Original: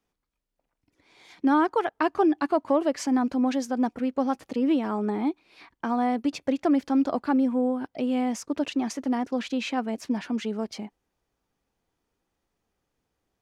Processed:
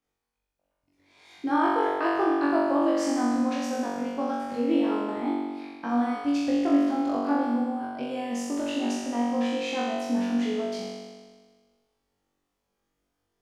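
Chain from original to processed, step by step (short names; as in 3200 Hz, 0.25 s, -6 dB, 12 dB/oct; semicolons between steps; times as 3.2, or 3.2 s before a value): flutter echo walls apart 3.6 m, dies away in 1.5 s; gain -6.5 dB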